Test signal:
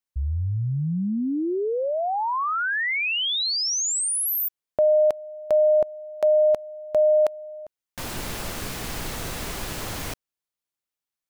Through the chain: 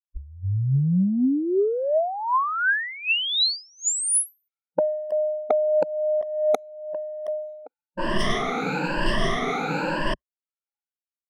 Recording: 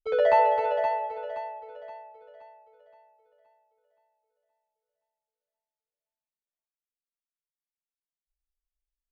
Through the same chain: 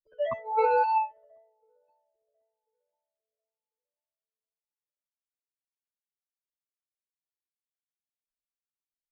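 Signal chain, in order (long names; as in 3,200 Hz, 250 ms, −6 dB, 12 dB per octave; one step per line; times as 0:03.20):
rippled gain that drifts along the octave scale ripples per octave 1.3, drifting +1 Hz, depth 23 dB
noise reduction from a noise print of the clip's start 29 dB
low-pass that shuts in the quiet parts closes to 520 Hz, open at −16 dBFS
parametric band 61 Hz −5 dB 0.35 octaves
compressor whose output falls as the input rises −23 dBFS, ratio −1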